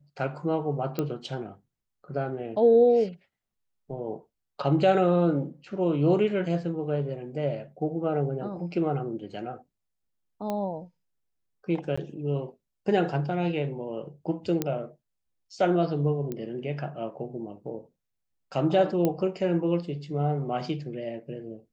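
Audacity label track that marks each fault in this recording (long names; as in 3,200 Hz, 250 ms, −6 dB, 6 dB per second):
0.990000	0.990000	click −15 dBFS
10.500000	10.500000	click −18 dBFS
11.960000	11.970000	drop-out 15 ms
14.620000	14.620000	click −12 dBFS
16.320000	16.320000	click −20 dBFS
19.050000	19.050000	click −13 dBFS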